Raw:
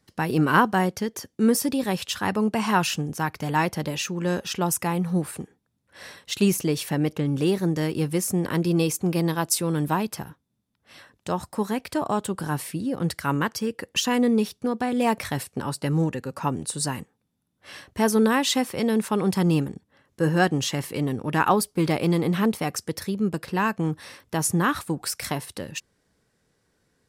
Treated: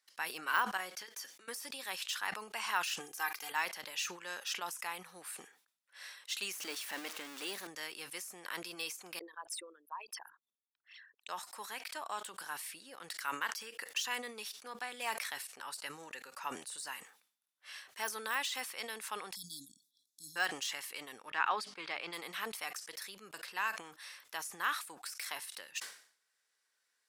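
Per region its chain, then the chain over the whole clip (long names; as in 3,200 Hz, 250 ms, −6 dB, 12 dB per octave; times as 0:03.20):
0:00.77–0:01.48: downward compressor, threshold −28 dBFS + notch comb filter 230 Hz
0:03.00–0:03.52: high-shelf EQ 11,000 Hz +11.5 dB + comb filter 2.5 ms, depth 83%
0:06.53–0:07.67: converter with a step at zero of −30 dBFS + low shelf with overshoot 150 Hz −14 dB, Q 3
0:09.19–0:11.29: spectral envelope exaggerated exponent 3 + high-pass filter 1,400 Hz
0:19.35–0:20.36: linear-phase brick-wall band-stop 310–3,300 Hz + high-shelf EQ 5,600 Hz +4 dB
0:21.30–0:22.13: low-pass filter 3,800 Hz + mains-hum notches 50/100/150/200/250/300 Hz
whole clip: de-essing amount 60%; high-pass filter 1,400 Hz 12 dB per octave; level that may fall only so fast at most 110 dB per second; level −5.5 dB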